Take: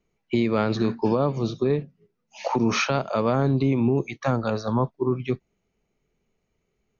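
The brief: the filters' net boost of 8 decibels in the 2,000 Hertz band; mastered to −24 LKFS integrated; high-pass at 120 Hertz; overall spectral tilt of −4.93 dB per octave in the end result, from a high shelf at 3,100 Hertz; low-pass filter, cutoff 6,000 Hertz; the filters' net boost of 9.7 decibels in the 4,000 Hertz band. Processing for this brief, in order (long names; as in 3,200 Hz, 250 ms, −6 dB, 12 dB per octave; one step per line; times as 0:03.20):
high-pass filter 120 Hz
low-pass filter 6,000 Hz
parametric band 2,000 Hz +5.5 dB
high-shelf EQ 3,100 Hz +7 dB
parametric band 4,000 Hz +6 dB
level −1 dB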